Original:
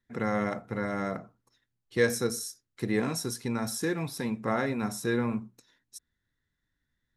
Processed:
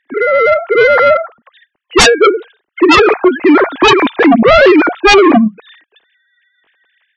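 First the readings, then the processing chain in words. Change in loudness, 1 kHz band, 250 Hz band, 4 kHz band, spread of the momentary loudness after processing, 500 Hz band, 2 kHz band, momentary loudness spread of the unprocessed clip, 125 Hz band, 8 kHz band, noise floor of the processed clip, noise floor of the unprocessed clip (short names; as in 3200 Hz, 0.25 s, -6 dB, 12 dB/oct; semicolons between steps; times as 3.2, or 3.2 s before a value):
+22.5 dB, +25.5 dB, +20.0 dB, +25.5 dB, 8 LU, +23.5 dB, +24.0 dB, 13 LU, +7.5 dB, +14.5 dB, -71 dBFS, -83 dBFS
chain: sine-wave speech; AGC gain up to 9 dB; sine folder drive 18 dB, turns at -2 dBFS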